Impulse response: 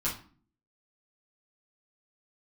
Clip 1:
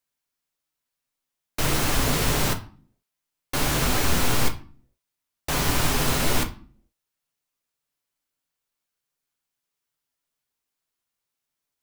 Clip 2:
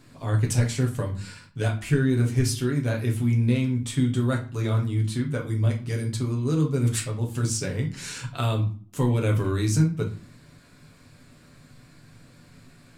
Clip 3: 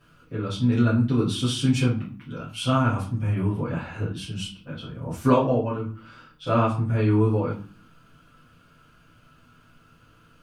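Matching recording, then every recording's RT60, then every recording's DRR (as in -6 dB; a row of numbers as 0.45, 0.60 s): 3; 0.45, 0.45, 0.45 s; 5.0, -0.5, -9.5 dB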